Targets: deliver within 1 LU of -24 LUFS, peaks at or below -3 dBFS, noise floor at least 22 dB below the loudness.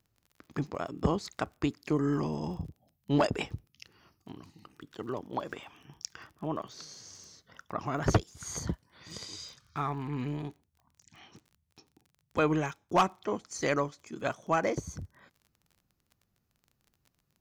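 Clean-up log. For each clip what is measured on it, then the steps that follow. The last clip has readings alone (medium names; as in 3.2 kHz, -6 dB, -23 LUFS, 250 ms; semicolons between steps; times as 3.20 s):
tick rate 29 per s; loudness -33.5 LUFS; peak level -16.5 dBFS; loudness target -24.0 LUFS
-> de-click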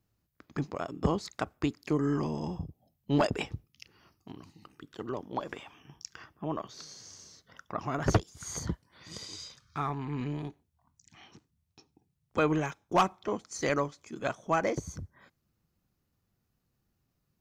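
tick rate 0.057 per s; loudness -33.0 LUFS; peak level -16.0 dBFS; loudness target -24.0 LUFS
-> trim +9 dB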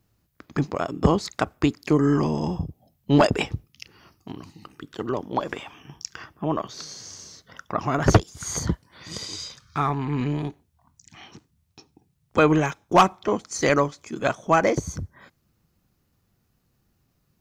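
loudness -24.0 LUFS; peak level -7.0 dBFS; noise floor -70 dBFS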